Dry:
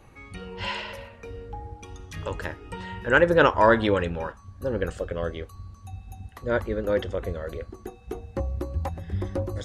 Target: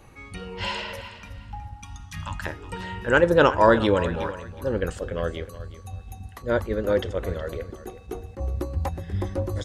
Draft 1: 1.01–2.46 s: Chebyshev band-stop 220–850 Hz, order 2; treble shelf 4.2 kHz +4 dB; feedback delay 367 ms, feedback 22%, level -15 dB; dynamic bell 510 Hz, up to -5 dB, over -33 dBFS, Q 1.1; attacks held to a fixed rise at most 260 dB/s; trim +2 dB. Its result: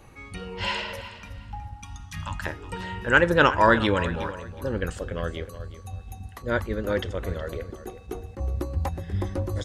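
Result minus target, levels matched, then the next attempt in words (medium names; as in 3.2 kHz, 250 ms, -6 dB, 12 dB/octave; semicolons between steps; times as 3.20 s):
2 kHz band +4.0 dB
1.01–2.46 s: Chebyshev band-stop 220–850 Hz, order 2; treble shelf 4.2 kHz +4 dB; feedback delay 367 ms, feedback 22%, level -15 dB; dynamic bell 2 kHz, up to -5 dB, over -33 dBFS, Q 1.1; attacks held to a fixed rise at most 260 dB/s; trim +2 dB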